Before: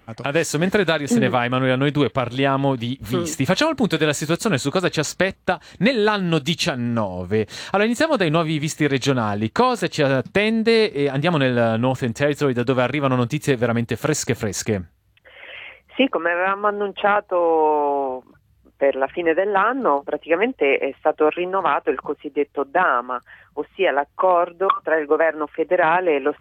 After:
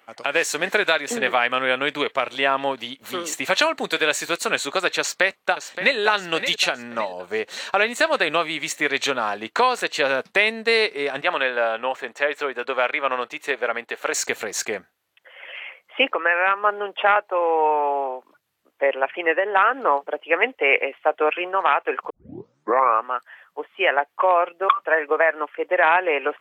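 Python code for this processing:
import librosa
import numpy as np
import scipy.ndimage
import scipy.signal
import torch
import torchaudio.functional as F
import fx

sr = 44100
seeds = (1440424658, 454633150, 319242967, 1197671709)

y = fx.echo_throw(x, sr, start_s=4.99, length_s=0.99, ms=570, feedback_pct=45, wet_db=-10.0)
y = fx.bass_treble(y, sr, bass_db=-15, treble_db=-11, at=(11.21, 14.14))
y = fx.edit(y, sr, fx.tape_start(start_s=22.1, length_s=0.95), tone=tone)
y = scipy.signal.sosfilt(scipy.signal.butter(2, 530.0, 'highpass', fs=sr, output='sos'), y)
y = fx.dynamic_eq(y, sr, hz=2200.0, q=1.5, threshold_db=-36.0, ratio=4.0, max_db=5)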